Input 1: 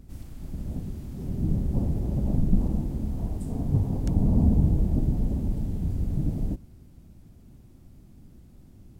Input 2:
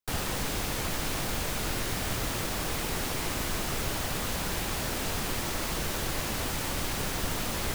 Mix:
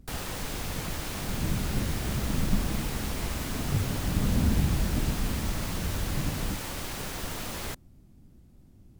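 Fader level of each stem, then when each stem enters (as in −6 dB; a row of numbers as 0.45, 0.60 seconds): −4.5, −4.0 decibels; 0.00, 0.00 seconds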